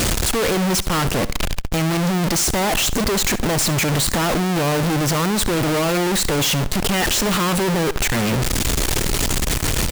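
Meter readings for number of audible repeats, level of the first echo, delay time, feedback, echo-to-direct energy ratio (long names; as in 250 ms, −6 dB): 2, −17.0 dB, 69 ms, 32%, −16.5 dB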